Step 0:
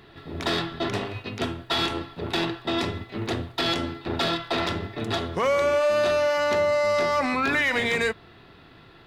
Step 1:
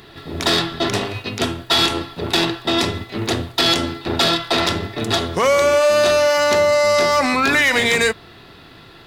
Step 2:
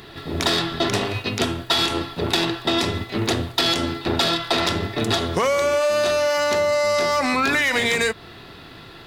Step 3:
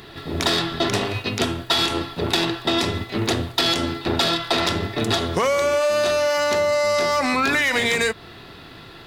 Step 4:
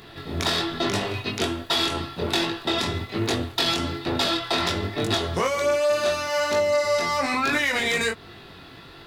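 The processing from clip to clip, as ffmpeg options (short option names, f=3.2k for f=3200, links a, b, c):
-af "bass=f=250:g=-1,treble=f=4k:g=9,volume=7dB"
-af "acompressor=threshold=-19dB:ratio=4,volume=1.5dB"
-af anull
-af "flanger=delay=20:depth=3:speed=1.2"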